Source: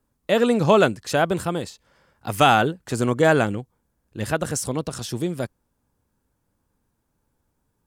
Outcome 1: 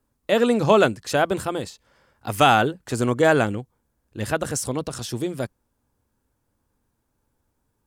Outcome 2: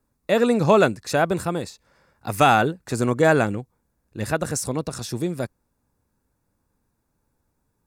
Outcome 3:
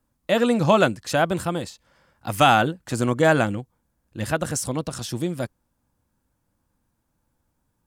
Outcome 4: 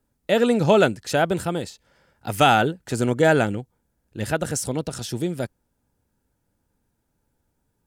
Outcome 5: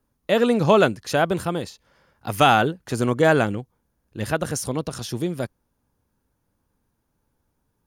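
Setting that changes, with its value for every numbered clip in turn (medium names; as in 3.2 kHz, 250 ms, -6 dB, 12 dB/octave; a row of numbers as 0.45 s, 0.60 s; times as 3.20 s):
band-stop, frequency: 170 Hz, 3.1 kHz, 420 Hz, 1.1 kHz, 7.8 kHz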